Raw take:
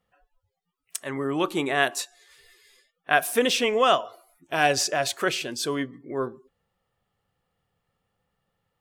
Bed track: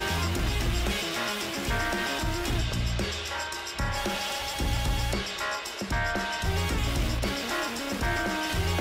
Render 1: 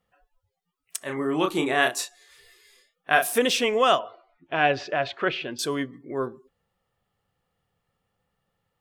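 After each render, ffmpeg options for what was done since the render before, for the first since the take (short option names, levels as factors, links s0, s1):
-filter_complex "[0:a]asettb=1/sr,asplit=3[s0][s1][s2];[s0]atrim=end=0.984[s3];[s1]atrim=start=0.98:end=3.38,asetpts=PTS-STARTPTS,afade=t=in:d=0.004:c=qsin,afade=t=out:st=2.396:d=0.004:c=qsin,asplit=2[s4][s5];[s5]adelay=32,volume=0.531[s6];[s4][s6]amix=inputs=2:normalize=0,atrim=end_sample=105840[s7];[s2]atrim=start=3.376[s8];[s3][s7]acrossfade=d=0.004:c1=hsin:c2=qsin[s9];[s9][s8]acrossfade=d=0.004:c1=qsin:c2=hsin,asettb=1/sr,asplit=3[s10][s11][s12];[s10]atrim=end=3.994[s13];[s11]atrim=start=3.99:end=5.59,asetpts=PTS-STARTPTS,afade=t=in:d=0.004:c=qsin,afade=t=out:st=1.596:d=0.004:c=qsin,lowpass=f=3400:w=0.5412,lowpass=f=3400:w=1.3066[s14];[s12]atrim=start=5.586[s15];[s13][s14]acrossfade=d=0.004:c1=hsin:c2=qsin[s16];[s16][s15]acrossfade=d=0.004:c1=qsin:c2=hsin"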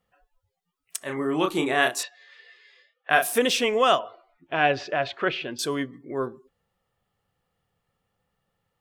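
-filter_complex "[0:a]asettb=1/sr,asplit=3[s0][s1][s2];[s0]atrim=end=2.034[s3];[s1]atrim=start=2.03:end=3.1,asetpts=PTS-STARTPTS,afade=t=in:d=0.004:c=qsin,afade=t=out:st=1.066:d=0.004:c=qsin,highpass=f=460:w=0.5412,highpass=f=460:w=1.3066,equalizer=f=540:t=q:w=4:g=5,equalizer=f=1800:t=q:w=4:g=7,equalizer=f=2800:t=q:w=4:g=4,lowpass=f=4600:w=0.5412,lowpass=f=4600:w=1.3066[s4];[s2]atrim=start=3.096[s5];[s3][s4]acrossfade=d=0.004:c1=hsin:c2=qsin[s6];[s6][s5]acrossfade=d=0.004:c1=qsin:c2=hsin"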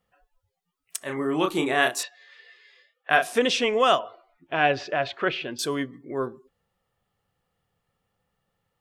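-filter_complex "[0:a]asettb=1/sr,asplit=3[s0][s1][s2];[s0]atrim=end=3.164[s3];[s1]atrim=start=3.16:end=3.8,asetpts=PTS-STARTPTS,afade=t=in:d=0.004:c=qsin,afade=t=out:st=0.636:d=0.004:c=qsin,lowpass=6400[s4];[s2]atrim=start=3.796[s5];[s3][s4]acrossfade=d=0.004:c1=hsin:c2=qsin[s6];[s6][s5]acrossfade=d=0.004:c1=qsin:c2=hsin"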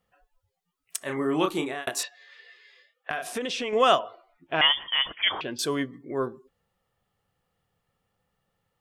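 -filter_complex "[0:a]asettb=1/sr,asplit=3[s0][s1][s2];[s0]atrim=end=3.104[s3];[s1]atrim=start=3.1:end=3.73,asetpts=PTS-STARTPTS,afade=t=in:d=0.004:c=qsin,afade=t=out:st=0.626:d=0.004:c=qsin,acompressor=threshold=0.0447:ratio=6:attack=3.2:release=140:knee=1:detection=peak[s4];[s2]atrim=start=3.726[s5];[s3][s4]acrossfade=d=0.004:c1=hsin:c2=qsin[s6];[s6][s5]acrossfade=d=0.004:c1=qsin:c2=hsin,asettb=1/sr,asplit=3[s7][s8][s9];[s7]atrim=end=4.614[s10];[s8]atrim=start=4.61:end=5.41,asetpts=PTS-STARTPTS,afade=t=in:d=0.004:c=qsin,afade=t=out:st=0.796:d=0.004:c=qsin,lowpass=f=3100:t=q:w=0.5098,lowpass=f=3100:t=q:w=0.6013,lowpass=f=3100:t=q:w=0.9,lowpass=f=3100:t=q:w=2.563,afreqshift=-3600[s11];[s9]atrim=start=5.406[s12];[s10][s11]acrossfade=d=0.004:c1=hsin:c2=qsin[s13];[s13][s12]acrossfade=d=0.004:c1=qsin:c2=hsin,asplit=2[s14][s15];[s14]atrim=end=1.87,asetpts=PTS-STARTPTS,afade=t=out:st=1.29:d=0.58:c=qsin[s16];[s15]atrim=start=1.87,asetpts=PTS-STARTPTS,afade=t=in:d=0.004:c=hsin[s17];[s16][s17]concat=n=2:v=0:a=1"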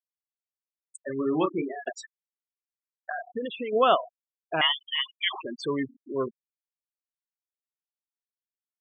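-af "afftfilt=real='re*gte(hypot(re,im),0.0794)':imag='im*gte(hypot(re,im),0.0794)':win_size=1024:overlap=0.75,highshelf=f=3700:g=-9"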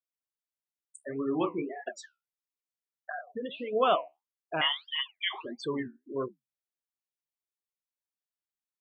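-af "flanger=delay=6.1:depth=9.3:regen=-65:speed=1.6:shape=sinusoidal"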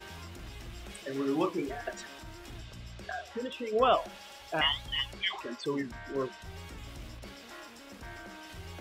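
-filter_complex "[1:a]volume=0.133[s0];[0:a][s0]amix=inputs=2:normalize=0"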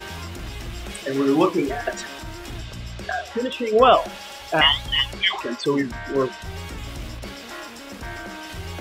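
-af "volume=3.76,alimiter=limit=0.708:level=0:latency=1"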